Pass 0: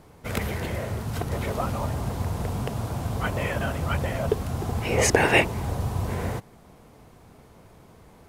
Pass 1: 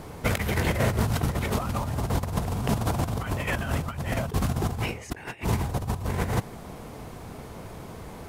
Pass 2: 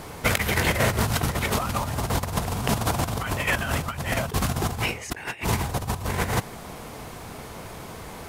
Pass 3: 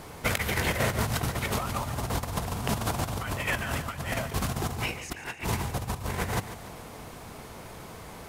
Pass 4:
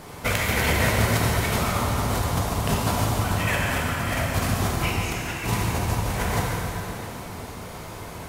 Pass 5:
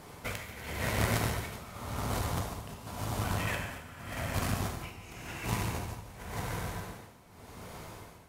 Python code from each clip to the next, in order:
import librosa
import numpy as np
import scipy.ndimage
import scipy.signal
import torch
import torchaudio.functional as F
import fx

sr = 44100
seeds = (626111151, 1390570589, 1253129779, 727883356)

y1 = fx.dynamic_eq(x, sr, hz=530.0, q=1.3, threshold_db=-36.0, ratio=4.0, max_db=-6)
y1 = fx.over_compress(y1, sr, threshold_db=-32.0, ratio=-0.5)
y1 = y1 * librosa.db_to_amplitude(5.5)
y2 = fx.tilt_shelf(y1, sr, db=-4.0, hz=770.0)
y2 = y2 * librosa.db_to_amplitude(3.5)
y3 = fx.echo_feedback(y2, sr, ms=144, feedback_pct=49, wet_db=-12.5)
y3 = y3 * librosa.db_to_amplitude(-5.0)
y4 = fx.rev_plate(y3, sr, seeds[0], rt60_s=3.2, hf_ratio=0.9, predelay_ms=0, drr_db=-3.5)
y4 = y4 * librosa.db_to_amplitude(1.0)
y5 = y4 * (1.0 - 0.81 / 2.0 + 0.81 / 2.0 * np.cos(2.0 * np.pi * 0.9 * (np.arange(len(y4)) / sr)))
y5 = fx.cheby_harmonics(y5, sr, harmonics=(2,), levels_db=(-8,), full_scale_db=-9.0)
y5 = y5 * librosa.db_to_amplitude(-8.0)